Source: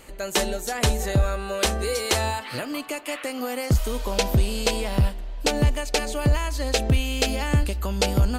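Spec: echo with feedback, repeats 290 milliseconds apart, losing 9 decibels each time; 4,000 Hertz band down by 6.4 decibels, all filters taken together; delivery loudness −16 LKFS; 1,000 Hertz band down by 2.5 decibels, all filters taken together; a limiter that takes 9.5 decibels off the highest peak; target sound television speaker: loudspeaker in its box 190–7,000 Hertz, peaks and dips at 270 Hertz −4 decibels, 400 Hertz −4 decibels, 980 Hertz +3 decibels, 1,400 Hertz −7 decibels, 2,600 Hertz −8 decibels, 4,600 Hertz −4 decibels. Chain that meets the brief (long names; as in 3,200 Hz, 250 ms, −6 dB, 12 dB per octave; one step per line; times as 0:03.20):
parametric band 1,000 Hz −3.5 dB
parametric band 4,000 Hz −4 dB
brickwall limiter −21 dBFS
loudspeaker in its box 190–7,000 Hz, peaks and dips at 270 Hz −4 dB, 400 Hz −4 dB, 980 Hz +3 dB, 1,400 Hz −7 dB, 2,600 Hz −8 dB, 4,600 Hz −4 dB
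repeating echo 290 ms, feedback 35%, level −9 dB
level +18.5 dB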